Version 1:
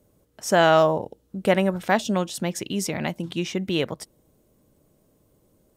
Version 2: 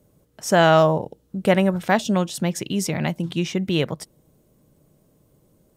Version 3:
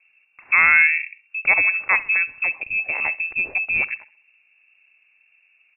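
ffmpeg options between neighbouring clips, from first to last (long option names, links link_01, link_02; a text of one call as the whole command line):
ffmpeg -i in.wav -af "equalizer=frequency=150:width_type=o:width=0.56:gain=6.5,volume=1.5dB" out.wav
ffmpeg -i in.wav -af "aecho=1:1:66|132|198:0.106|0.0466|0.0205,lowpass=frequency=2400:width_type=q:width=0.5098,lowpass=frequency=2400:width_type=q:width=0.6013,lowpass=frequency=2400:width_type=q:width=0.9,lowpass=frequency=2400:width_type=q:width=2.563,afreqshift=-2800" out.wav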